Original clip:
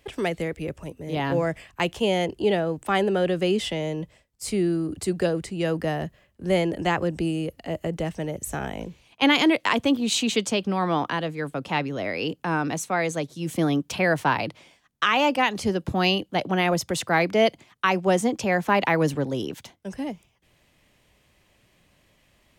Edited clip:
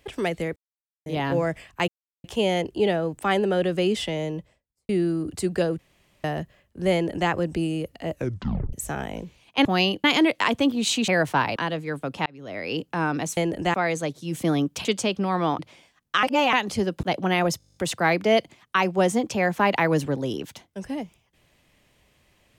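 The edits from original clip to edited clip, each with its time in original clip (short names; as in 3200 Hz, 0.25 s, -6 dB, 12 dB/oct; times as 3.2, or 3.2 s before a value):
0.56–1.06 mute
1.88 insert silence 0.36 s
3.88–4.53 studio fade out
5.43–5.88 room tone
6.57–6.94 copy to 12.88
7.76 tape stop 0.61 s
10.33–11.07 swap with 13.99–14.47
11.77–12.28 fade in linear
15.11–15.41 reverse
15.91–16.3 move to 9.29
16.85 stutter 0.02 s, 10 plays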